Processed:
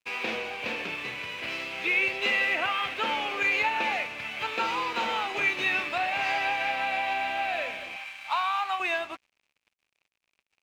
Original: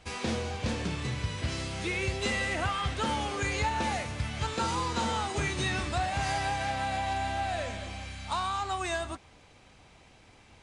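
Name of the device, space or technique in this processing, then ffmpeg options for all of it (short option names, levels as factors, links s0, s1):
pocket radio on a weak battery: -filter_complex "[0:a]highpass=390,lowpass=3500,aeval=exprs='sgn(val(0))*max(abs(val(0))-0.00224,0)':c=same,equalizer=f=2500:t=o:w=0.5:g=12,asettb=1/sr,asplit=3[s0][s1][s2];[s0]atrim=end=7.964[s3];[s1]atrim=start=7.96:end=8.8,asetpts=PTS-STARTPTS,afade=t=in:d=0.004:c=qsin,afade=t=out:st=0.836:d=0.004:c=qsin,lowshelf=f=600:t=q:w=1.5:g=-10[s4];[s2]atrim=start=8.796[s5];[s3][s4]acrossfade=d=0.004:c1=hsin:c2=qsin[s6];[s6][s5]acrossfade=d=0.004:c1=qsin:c2=hsin,volume=1.33"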